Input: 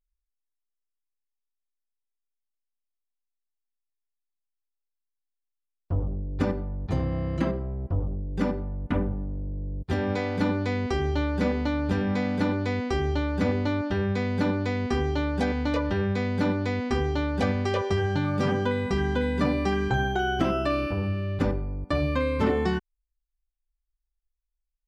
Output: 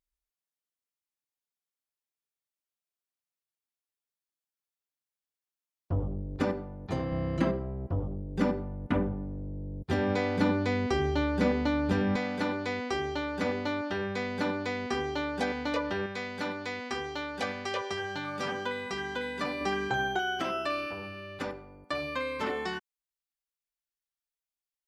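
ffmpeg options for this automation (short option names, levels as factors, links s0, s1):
-af "asetnsamples=n=441:p=0,asendcmd='6.36 highpass f 270;7.12 highpass f 120;12.16 highpass f 520;16.06 highpass f 1100;19.61 highpass f 540;20.19 highpass f 1100',highpass=f=91:p=1"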